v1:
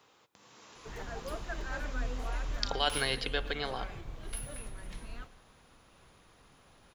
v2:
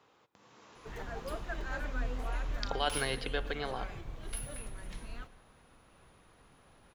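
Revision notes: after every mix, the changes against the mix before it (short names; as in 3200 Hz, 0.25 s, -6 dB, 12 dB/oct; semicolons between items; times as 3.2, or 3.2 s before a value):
speech: add high shelf 3100 Hz -10 dB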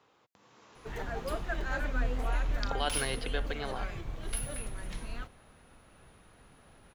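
background +5.0 dB; reverb: off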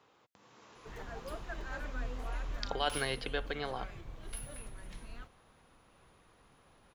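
background -8.0 dB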